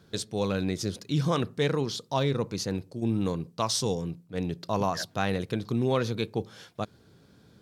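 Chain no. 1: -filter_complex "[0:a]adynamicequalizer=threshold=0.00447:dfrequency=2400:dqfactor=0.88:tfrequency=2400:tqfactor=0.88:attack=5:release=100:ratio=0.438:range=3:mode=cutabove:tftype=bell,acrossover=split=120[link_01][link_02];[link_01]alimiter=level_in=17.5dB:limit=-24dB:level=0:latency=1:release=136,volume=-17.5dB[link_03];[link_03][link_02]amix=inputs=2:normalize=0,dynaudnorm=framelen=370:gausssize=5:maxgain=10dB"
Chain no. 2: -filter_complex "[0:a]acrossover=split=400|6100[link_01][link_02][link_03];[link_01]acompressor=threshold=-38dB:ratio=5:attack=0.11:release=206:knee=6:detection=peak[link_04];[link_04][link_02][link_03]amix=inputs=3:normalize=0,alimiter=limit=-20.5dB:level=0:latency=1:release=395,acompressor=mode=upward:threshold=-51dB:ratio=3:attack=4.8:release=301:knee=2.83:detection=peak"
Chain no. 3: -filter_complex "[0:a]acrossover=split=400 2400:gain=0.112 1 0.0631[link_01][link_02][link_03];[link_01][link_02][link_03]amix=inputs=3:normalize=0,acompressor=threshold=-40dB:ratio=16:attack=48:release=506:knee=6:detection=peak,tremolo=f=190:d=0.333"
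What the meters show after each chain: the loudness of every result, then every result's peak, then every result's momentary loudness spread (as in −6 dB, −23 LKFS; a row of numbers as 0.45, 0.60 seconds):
−21.5, −36.0, −46.0 LKFS; −4.0, −20.5, −24.0 dBFS; 11, 7, 4 LU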